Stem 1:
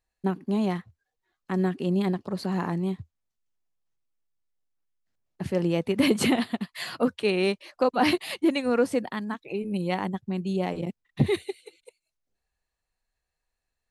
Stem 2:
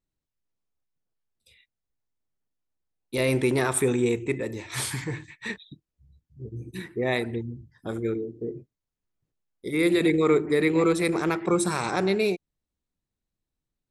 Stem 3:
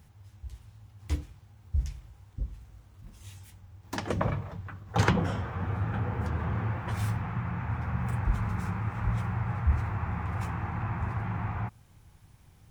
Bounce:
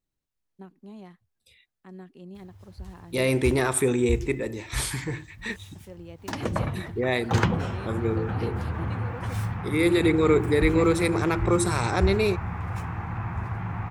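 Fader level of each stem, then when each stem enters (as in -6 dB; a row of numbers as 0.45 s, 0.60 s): -18.5 dB, +0.5 dB, +1.0 dB; 0.35 s, 0.00 s, 2.35 s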